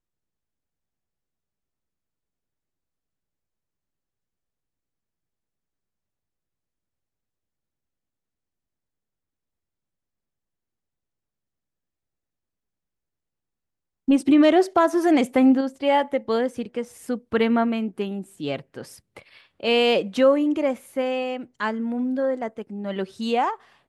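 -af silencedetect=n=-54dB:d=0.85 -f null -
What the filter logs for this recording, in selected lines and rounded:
silence_start: 0.00
silence_end: 14.08 | silence_duration: 14.08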